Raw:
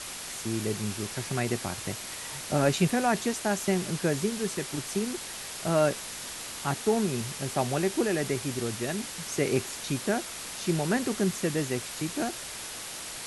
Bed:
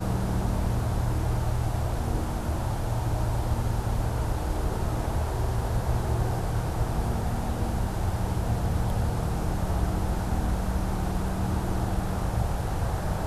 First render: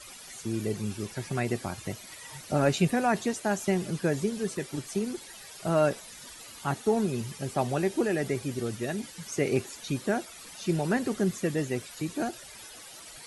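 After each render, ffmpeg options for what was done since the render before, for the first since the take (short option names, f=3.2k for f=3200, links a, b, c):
-af "afftdn=nr=13:nf=-39"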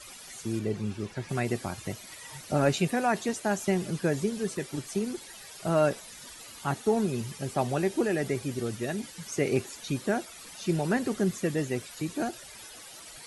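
-filter_complex "[0:a]asettb=1/sr,asplit=3[a][b][c];[a]atrim=end=0.594[d];[b]atrim=start=0.59:end=1.29,asetpts=PTS-STARTPTS,afade=t=in:d=0.004:c=qsin,afade=t=out:st=0.696:d=0.004:c=qsin,aemphasis=mode=reproduction:type=50fm[e];[c]atrim=start=1.286[f];[d][e]acrossfade=d=0.004:c1=hsin:c2=qsin[g];[g][f]acrossfade=d=0.004:c1=qsin:c2=hsin,asettb=1/sr,asplit=3[h][i][j];[h]atrim=end=2.804[k];[i]atrim=start=2.8:end=3.29,asetpts=PTS-STARTPTS,afade=t=in:d=0.004:c=qsin,afade=t=out:st=0.486:d=0.004:c=qsin,lowshelf=f=130:g=-9.5[l];[j]atrim=start=3.286[m];[k][l]acrossfade=d=0.004:c1=hsin:c2=qsin[n];[n][m]acrossfade=d=0.004:c1=qsin:c2=hsin"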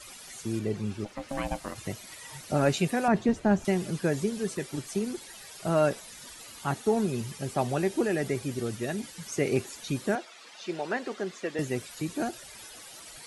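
-filter_complex "[0:a]asplit=3[a][b][c];[a]afade=t=out:st=1.04:d=0.02[d];[b]aeval=exprs='val(0)*sin(2*PI*410*n/s)':c=same,afade=t=in:st=1.04:d=0.02,afade=t=out:st=1.74:d=0.02[e];[c]afade=t=in:st=1.74:d=0.02[f];[d][e][f]amix=inputs=3:normalize=0,asettb=1/sr,asplit=3[g][h][i];[g]atrim=end=3.084[j];[h]atrim=start=3.08:end=3.65,asetpts=PTS-STARTPTS,afade=t=in:d=0.004:c=qsin,afade=t=out:st=0.566:d=0.004:c=qsin,aemphasis=mode=reproduction:type=riaa[k];[i]atrim=start=3.646[l];[j][k]acrossfade=d=0.004:c1=hsin:c2=qsin[m];[m][l]acrossfade=d=0.004:c1=qsin:c2=hsin,asettb=1/sr,asplit=3[n][o][p];[n]atrim=end=10.154[q];[o]atrim=start=10.15:end=11.59,asetpts=PTS-STARTPTS,afade=t=in:d=0.004:c=qsin,afade=t=out:st=1.436:d=0.004:c=qsin,highpass=420,lowpass=4.8k[r];[p]atrim=start=11.586[s];[q][r]acrossfade=d=0.004:c1=hsin:c2=qsin[t];[t][s]acrossfade=d=0.004:c1=qsin:c2=hsin"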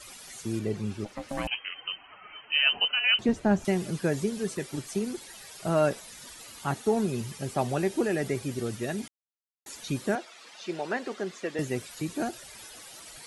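-filter_complex "[0:a]asettb=1/sr,asplit=3[a][b][c];[a]atrim=end=1.474[d];[b]atrim=start=1.47:end=3.19,asetpts=PTS-STARTPTS,afade=t=in:d=0.004:c=qsin,afade=t=out:st=1.716:d=0.004:c=qsin,lowpass=f=2.7k:t=q:w=0.5098,lowpass=f=2.7k:t=q:w=0.6013,lowpass=f=2.7k:t=q:w=0.9,lowpass=f=2.7k:t=q:w=2.563,afreqshift=-3200[e];[c]atrim=start=3.186[f];[d][e]acrossfade=d=0.004:c1=hsin:c2=qsin[g];[g][f]acrossfade=d=0.004:c1=qsin:c2=hsin,asplit=3[h][i][j];[h]atrim=end=9.08,asetpts=PTS-STARTPTS,afade=t=out:st=9.076:d=0.004:c=hsin[k];[i]atrim=start=9.08:end=9.66,asetpts=PTS-STARTPTS,volume=0[l];[j]atrim=start=9.66,asetpts=PTS-STARTPTS,afade=t=in:d=0.004:c=hsin[m];[k][l][m]concat=n=3:v=0:a=1"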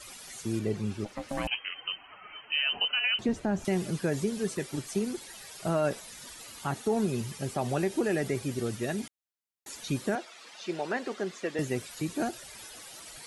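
-af "alimiter=limit=-18.5dB:level=0:latency=1:release=56"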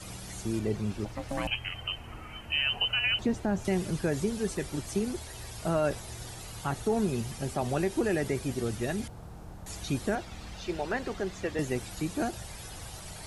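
-filter_complex "[1:a]volume=-17.5dB[a];[0:a][a]amix=inputs=2:normalize=0"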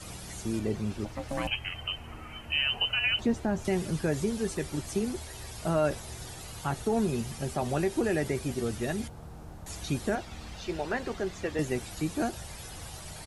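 -filter_complex "[0:a]asplit=2[a][b];[b]adelay=13,volume=-12.5dB[c];[a][c]amix=inputs=2:normalize=0"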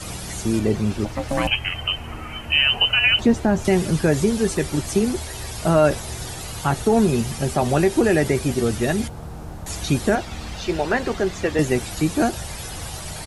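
-af "volume=10.5dB"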